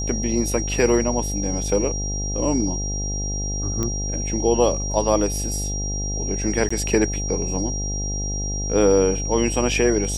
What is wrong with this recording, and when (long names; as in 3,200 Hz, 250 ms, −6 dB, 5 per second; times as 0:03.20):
mains buzz 50 Hz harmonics 17 −27 dBFS
whistle 5,700 Hz −28 dBFS
0:03.83: click −11 dBFS
0:06.69–0:06.71: drop-out 15 ms